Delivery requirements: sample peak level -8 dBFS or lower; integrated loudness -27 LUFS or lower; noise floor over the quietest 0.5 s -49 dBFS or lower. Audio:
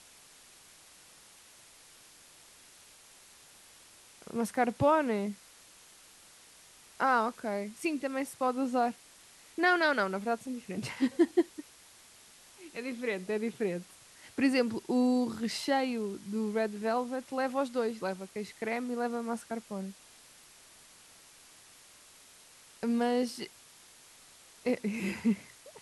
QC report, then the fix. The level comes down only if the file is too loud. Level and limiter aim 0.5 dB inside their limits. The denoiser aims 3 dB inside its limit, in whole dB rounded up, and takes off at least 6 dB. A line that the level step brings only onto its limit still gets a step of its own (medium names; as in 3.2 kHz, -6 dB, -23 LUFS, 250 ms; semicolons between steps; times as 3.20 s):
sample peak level -14.5 dBFS: pass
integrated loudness -32.0 LUFS: pass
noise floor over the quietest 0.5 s -57 dBFS: pass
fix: none needed